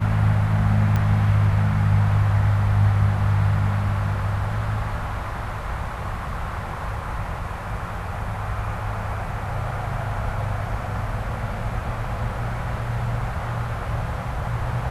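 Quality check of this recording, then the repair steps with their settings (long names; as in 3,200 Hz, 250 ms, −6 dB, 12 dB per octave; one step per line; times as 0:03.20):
0:00.96: click −12 dBFS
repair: click removal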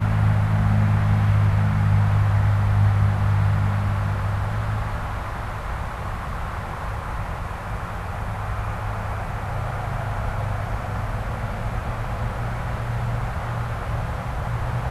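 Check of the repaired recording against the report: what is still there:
0:00.96: click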